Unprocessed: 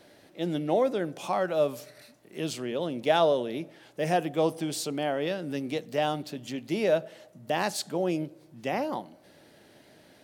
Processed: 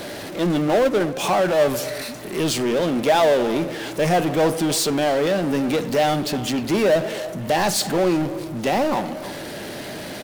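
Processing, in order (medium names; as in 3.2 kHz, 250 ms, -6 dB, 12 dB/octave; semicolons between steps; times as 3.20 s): power-law waveshaper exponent 0.5; 0.85–1.30 s: transient shaper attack +5 dB, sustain -10 dB; speakerphone echo 310 ms, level -13 dB; on a send at -18 dB: reverberation RT60 0.55 s, pre-delay 5 ms; on the sum: trim +1.5 dB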